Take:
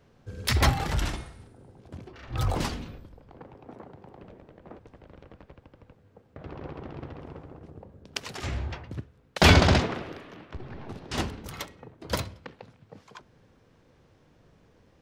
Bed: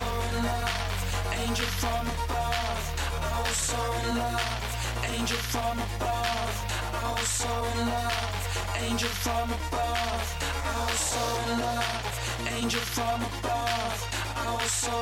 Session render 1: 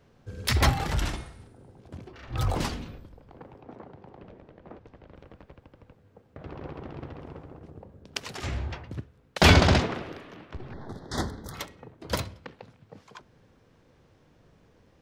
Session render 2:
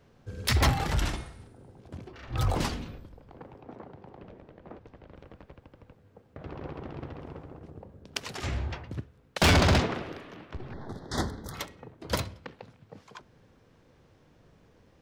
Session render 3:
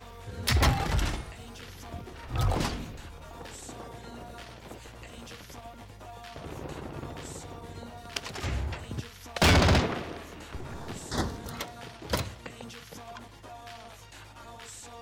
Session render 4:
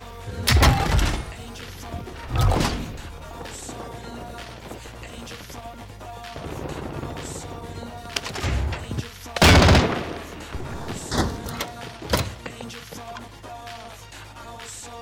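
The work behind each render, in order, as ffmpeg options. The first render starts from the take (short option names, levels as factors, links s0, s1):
-filter_complex "[0:a]asettb=1/sr,asplit=3[s0][s1][s2];[s0]atrim=end=3.614[s3];[s1]atrim=start=3.61:end=5.15,asetpts=PTS-STARTPTS,afade=t=in:d=0.004:c=qsin,afade=t=out:st=1.536:d=0.004:c=qsin,lowpass=5900[s4];[s2]atrim=start=5.146[s5];[s3][s4]acrossfade=d=0.004:c1=hsin:c2=qsin[s6];[s6][s5]acrossfade=d=0.004:c1=qsin:c2=hsin,asettb=1/sr,asplit=3[s7][s8][s9];[s7]atrim=end=10.734[s10];[s8]atrim=start=10.73:end=11.55,asetpts=PTS-STARTPTS,afade=t=in:d=0.004:c=qsin,afade=t=out:st=0.816:d=0.004:c=qsin,asuperstop=centerf=2600:order=8:qfactor=1.9[s11];[s9]atrim=start=11.546[s12];[s10][s11]acrossfade=d=0.004:c1=hsin:c2=qsin[s13];[s13][s12]acrossfade=d=0.004:c1=qsin:c2=hsin"
-af "asoftclip=type=hard:threshold=0.141"
-filter_complex "[1:a]volume=0.141[s0];[0:a][s0]amix=inputs=2:normalize=0"
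-af "volume=2.37"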